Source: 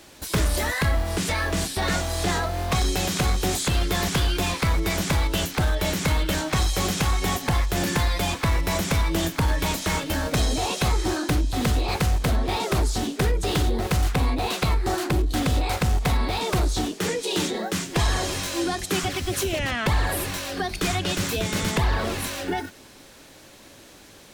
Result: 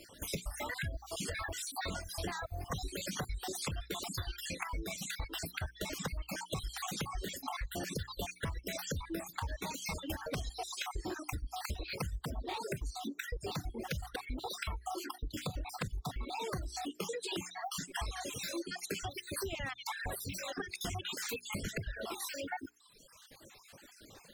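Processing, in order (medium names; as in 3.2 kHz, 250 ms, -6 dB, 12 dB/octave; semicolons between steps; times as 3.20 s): random holes in the spectrogram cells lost 47%; reverb removal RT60 1.3 s; hum notches 60/120/180/240/300/360/420 Hz; reverb removal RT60 1.5 s; compression, threshold -33 dBFS, peak gain reduction 13 dB; trim -3 dB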